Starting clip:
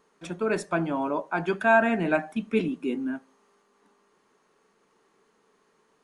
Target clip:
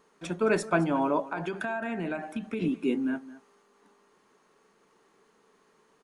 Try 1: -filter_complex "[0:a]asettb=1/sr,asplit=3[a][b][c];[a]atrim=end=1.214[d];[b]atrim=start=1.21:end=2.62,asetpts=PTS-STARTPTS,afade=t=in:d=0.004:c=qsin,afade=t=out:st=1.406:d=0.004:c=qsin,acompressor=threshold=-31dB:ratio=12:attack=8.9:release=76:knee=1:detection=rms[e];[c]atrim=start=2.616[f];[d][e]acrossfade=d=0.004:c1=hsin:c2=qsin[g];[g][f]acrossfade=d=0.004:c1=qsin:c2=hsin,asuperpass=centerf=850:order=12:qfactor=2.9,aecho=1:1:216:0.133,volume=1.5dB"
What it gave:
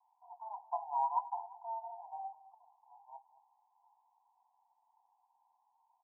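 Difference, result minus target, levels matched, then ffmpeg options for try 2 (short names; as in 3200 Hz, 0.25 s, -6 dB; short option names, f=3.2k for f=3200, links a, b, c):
1000 Hz band +7.5 dB
-filter_complex "[0:a]asettb=1/sr,asplit=3[a][b][c];[a]atrim=end=1.214[d];[b]atrim=start=1.21:end=2.62,asetpts=PTS-STARTPTS,afade=t=in:d=0.004:c=qsin,afade=t=out:st=1.406:d=0.004:c=qsin,acompressor=threshold=-31dB:ratio=12:attack=8.9:release=76:knee=1:detection=rms[e];[c]atrim=start=2.616[f];[d][e]acrossfade=d=0.004:c1=hsin:c2=qsin[g];[g][f]acrossfade=d=0.004:c1=qsin:c2=hsin,aecho=1:1:216:0.133,volume=1.5dB"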